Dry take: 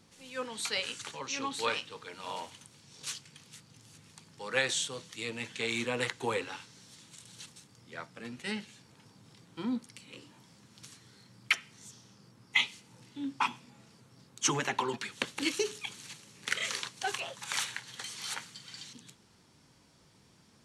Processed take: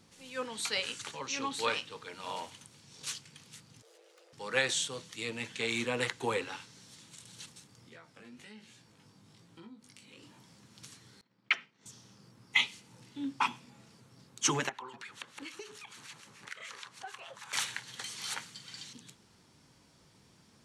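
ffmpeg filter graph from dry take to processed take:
-filter_complex "[0:a]asettb=1/sr,asplit=3[s0][s1][s2];[s0]atrim=end=3.824[s3];[s1]atrim=start=3.82:end=4.33,asetpts=PTS-STARTPTS,afade=t=in:d=0.004:c=qsin,afade=t=out:st=0.506:d=0.004:c=qsin,equalizer=f=10000:w=0.45:g=-7.5,aeval=exprs='(tanh(501*val(0)+0.55)-tanh(0.55))/501':c=same,afreqshift=340[s4];[s2]atrim=start=4.326[s5];[s3][s4]acrossfade=d=0.004:c1=hsin:c2=qsin[s6];[s6][s5]acrossfade=d=0.004:c1=qsin:c2=hsin,asettb=1/sr,asplit=3[s7][s8][s9];[s7]atrim=end=7.894[s10];[s8]atrim=start=7.89:end=10.23,asetpts=PTS-STARTPTS,afade=t=in:d=0.004:c=qsin,afade=t=out:st=2.336:d=0.004:c=qsin,acompressor=threshold=0.00562:ratio=12:attack=3.2:release=140:knee=1:detection=peak,flanger=delay=17.5:depth=3:speed=1.2[s11];[s9]atrim=start=10.226[s12];[s10][s11]acrossfade=d=0.004:c1=hsin:c2=qsin[s13];[s13][s12]acrossfade=d=0.004:c1=qsin:c2=hsin,asettb=1/sr,asplit=3[s14][s15][s16];[s14]atrim=end=11.214[s17];[s15]atrim=start=11.21:end=11.86,asetpts=PTS-STARTPTS,afade=t=in:d=0.004:c=qsin,afade=t=out:st=0.646:d=0.004:c=qsin,agate=range=0.0224:threshold=0.00316:ratio=3:release=100:detection=peak,highpass=200,lowpass=3300[s18];[s16]atrim=start=11.856[s19];[s17][s18]acrossfade=d=0.004:c1=hsin:c2=qsin[s20];[s20][s19]acrossfade=d=0.004:c1=qsin:c2=hsin,asettb=1/sr,asplit=3[s21][s22][s23];[s21]atrim=end=14.694[s24];[s22]atrim=start=14.69:end=17.53,asetpts=PTS-STARTPTS,afade=t=in:d=0.004:c=qsin,afade=t=out:st=2.836:d=0.004:c=qsin,equalizer=f=1200:t=o:w=2:g=10,acompressor=threshold=0.00708:ratio=3:attack=3.2:release=140:knee=1:detection=peak,acrossover=split=1300[s25][s26];[s25]aeval=exprs='val(0)*(1-0.7/2+0.7/2*cos(2*PI*6.8*n/s))':c=same[s27];[s26]aeval=exprs='val(0)*(1-0.7/2-0.7/2*cos(2*PI*6.8*n/s))':c=same[s28];[s27][s28]amix=inputs=2:normalize=0[s29];[s23]atrim=start=17.526[s30];[s24][s29]acrossfade=d=0.004:c1=hsin:c2=qsin[s31];[s31][s30]acrossfade=d=0.004:c1=qsin:c2=hsin"

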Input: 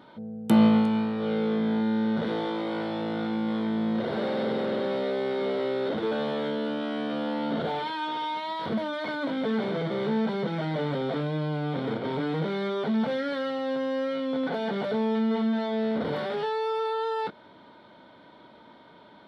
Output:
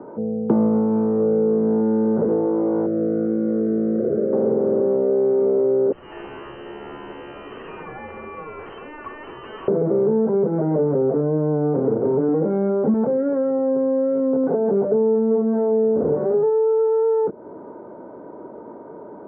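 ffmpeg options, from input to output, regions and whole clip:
-filter_complex "[0:a]asettb=1/sr,asplit=3[s0][s1][s2];[s0]atrim=end=2.864[s3];[s1]atrim=start=2.86:end=4.33,asetpts=PTS-STARTPTS,afade=t=in:d=0.004:c=qsin,afade=t=out:st=1.466:d=0.004:c=qsin,acrossover=split=200|2200[s4][s5][s6];[s4]acompressor=threshold=0.01:ratio=4[s7];[s5]acompressor=threshold=0.0282:ratio=4[s8];[s6]acompressor=threshold=0.00224:ratio=4[s9];[s7][s8][s9]amix=inputs=3:normalize=0,asuperstop=centerf=910:order=4:qfactor=1.2[s10];[s2]atrim=start=4.326[s11];[s3][s10]acrossfade=d=0.004:c1=hsin:c2=qsin[s12];[s12][s11]acrossfade=d=0.004:c1=qsin:c2=hsin,asettb=1/sr,asplit=3[s13][s14][s15];[s13]atrim=end=5.924[s16];[s14]atrim=start=5.92:end=9.68,asetpts=PTS-STARTPTS,afade=t=in:d=0.004:c=qsin,afade=t=out:st=3.756:d=0.004:c=qsin,lowpass=f=2800:t=q:w=0.5098,lowpass=f=2800:t=q:w=0.6013,lowpass=f=2800:t=q:w=0.9,lowpass=f=2800:t=q:w=2.563,afreqshift=-3300,acrusher=bits=7:dc=4:mix=0:aa=0.000001[s17];[s15]atrim=start=9.676[s18];[s16][s17]acrossfade=d=0.004:c1=hsin:c2=qsin[s19];[s19][s18]acrossfade=d=0.004:c1=qsin:c2=hsin,asettb=1/sr,asplit=3[s20][s21][s22];[s20]atrim=end=12.284[s23];[s21]atrim=start=12.28:end=12.94,asetpts=PTS-STARTPTS,afade=t=in:d=0.004:c=qsin,afade=t=out:st=0.656:d=0.004:c=qsin,aecho=1:1:3.7:0.59,atrim=end_sample=29106,asubboost=boost=8.5:cutoff=250[s24];[s22]atrim=start=12.936[s25];[s23][s24]acrossfade=d=0.004:c1=hsin:c2=qsin[s26];[s26][s25]acrossfade=d=0.004:c1=qsin:c2=hsin,asettb=1/sr,asplit=3[s27][s28][s29];[s27]atrim=end=14.704[s30];[s28]atrim=start=14.7:end=16.5,asetpts=PTS-STARTPTS,afade=t=in:d=0.004:c=qsin,afade=t=out:st=1.796:d=0.004:c=qsin,highshelf=f=4200:g=-9.5,asplit=2[s31][s32];[s32]adelay=25,volume=0.224[s33];[s31][s33]amix=inputs=2:normalize=0,atrim=end_sample=79380[s34];[s29]atrim=start=16.496[s35];[s30][s34]acrossfade=d=0.004:c1=hsin:c2=qsin[s36];[s36][s35]acrossfade=d=0.004:c1=qsin:c2=hsin,lowpass=f=1200:w=0.5412,lowpass=f=1200:w=1.3066,equalizer=f=410:t=o:w=0.99:g=14,acrossover=split=160|510[s37][s38][s39];[s37]acompressor=threshold=0.0158:ratio=4[s40];[s38]acompressor=threshold=0.0355:ratio=4[s41];[s39]acompressor=threshold=0.0126:ratio=4[s42];[s40][s41][s42]amix=inputs=3:normalize=0,volume=2.51"

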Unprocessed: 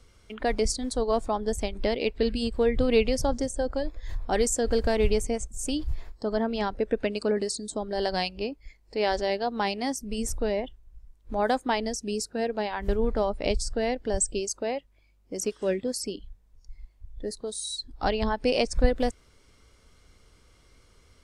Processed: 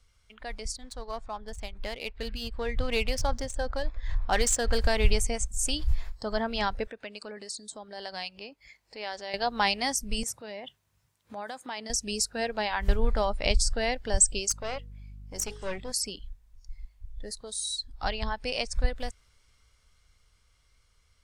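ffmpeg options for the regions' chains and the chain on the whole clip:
-filter_complex "[0:a]asettb=1/sr,asplit=3[s0][s1][s2];[s0]atrim=end=0.764[s3];[s1]atrim=start=0.76:end=4.78,asetpts=PTS-STARTPTS,afade=t=in:d=0.004:c=qsin,afade=t=out:st=4.016:d=0.004:c=qsin,equalizer=f=1200:w=0.93:g=3,adynamicsmooth=sensitivity=8:basefreq=4100[s4];[s2]atrim=start=4.776[s5];[s3][s4]acrossfade=d=0.004:c1=hsin:c2=qsin[s6];[s6][s5]acrossfade=d=0.004:c1=qsin:c2=hsin,asettb=1/sr,asplit=3[s7][s8][s9];[s7]atrim=end=6.874[s10];[s8]atrim=start=6.87:end=9.34,asetpts=PTS-STARTPTS,afade=t=in:d=0.004:c=qsin,afade=t=out:st=2.466:d=0.004:c=qsin,highpass=180,highshelf=f=5500:g=-4,acompressor=threshold=0.00224:ratio=1.5:attack=3.2:release=140:knee=1:detection=peak[s11];[s9]atrim=start=9.336[s12];[s10][s11]acrossfade=d=0.004:c1=hsin:c2=qsin[s13];[s13][s12]acrossfade=d=0.004:c1=qsin:c2=hsin,asettb=1/sr,asplit=3[s14][s15][s16];[s14]atrim=end=10.234[s17];[s15]atrim=start=10.23:end=11.9,asetpts=PTS-STARTPTS,afade=t=in:d=0.004:c=qsin,afade=t=out:st=1.666:d=0.004:c=qsin,acompressor=threshold=0.0224:ratio=10:attack=3.2:release=140:knee=1:detection=peak,highpass=f=130:w=0.5412,highpass=f=130:w=1.3066[s18];[s16]atrim=start=11.896[s19];[s17][s18]acrossfade=d=0.004:c1=hsin:c2=qsin[s20];[s20][s19]acrossfade=d=0.004:c1=qsin:c2=hsin,asettb=1/sr,asplit=3[s21][s22][s23];[s21]atrim=end=14.504[s24];[s22]atrim=start=14.5:end=15.92,asetpts=PTS-STARTPTS,afade=t=in:d=0.004:c=qsin,afade=t=out:st=1.416:d=0.004:c=qsin,bandreject=f=60:t=h:w=6,bandreject=f=120:t=h:w=6,bandreject=f=180:t=h:w=6,bandreject=f=240:t=h:w=6,bandreject=f=300:t=h:w=6,bandreject=f=360:t=h:w=6,bandreject=f=420:t=h:w=6,bandreject=f=480:t=h:w=6,aeval=exprs='val(0)+0.00708*(sin(2*PI*50*n/s)+sin(2*PI*2*50*n/s)/2+sin(2*PI*3*50*n/s)/3+sin(2*PI*4*50*n/s)/4+sin(2*PI*5*50*n/s)/5)':c=same,aeval=exprs='(tanh(14.1*val(0)+0.5)-tanh(0.5))/14.1':c=same[s25];[s23]atrim=start=15.916[s26];[s24][s25]acrossfade=d=0.004:c1=hsin:c2=qsin[s27];[s27][s26]acrossfade=d=0.004:c1=qsin:c2=hsin,equalizer=f=320:w=0.67:g=-14.5,dynaudnorm=f=290:g=21:m=5.31,volume=0.473"

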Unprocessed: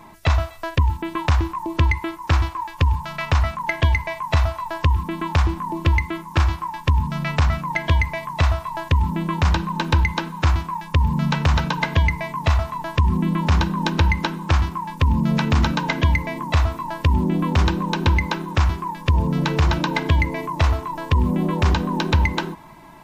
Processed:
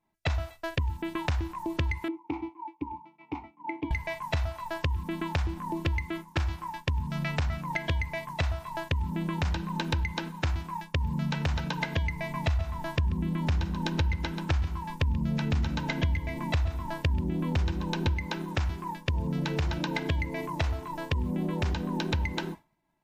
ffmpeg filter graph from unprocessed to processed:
-filter_complex "[0:a]asettb=1/sr,asplit=3[s0][s1][s2];[s0]atrim=end=2.084[s3];[s1]atrim=start=2.08:end=3.91,asetpts=PTS-STARTPTS,afade=t=in:d=0.004:c=qsin,afade=t=out:st=1.826:d=0.004:c=qsin,asplit=3[s4][s5][s6];[s4]bandpass=f=300:t=q:w=8,volume=1[s7];[s5]bandpass=f=870:t=q:w=8,volume=0.501[s8];[s6]bandpass=f=2240:t=q:w=8,volume=0.355[s9];[s7][s8][s9]amix=inputs=3:normalize=0,equalizer=f=460:t=o:w=2.1:g=13.5[s10];[s2]atrim=start=3.906[s11];[s3][s10]acrossfade=d=0.004:c1=hsin:c2=qsin[s12];[s12][s11]acrossfade=d=0.004:c1=qsin:c2=hsin,asettb=1/sr,asplit=3[s13][s14][s15];[s13]atrim=end=12.164[s16];[s14]atrim=start=12.16:end=18.14,asetpts=PTS-STARTPTS,afade=t=in:d=0.004:c=qsin,afade=t=out:st=5.976:d=0.004:c=qsin,lowshelf=f=120:g=7,aecho=1:1:135:0.282,atrim=end_sample=263718[s17];[s15]atrim=start=18.136[s18];[s16][s17]acrossfade=d=0.004:c1=hsin:c2=qsin[s19];[s19][s18]acrossfade=d=0.004:c1=qsin:c2=hsin,agate=range=0.0224:threshold=0.0447:ratio=3:detection=peak,equalizer=f=1100:w=3.3:g=-7.5,acompressor=threshold=0.0562:ratio=3,volume=0.708"

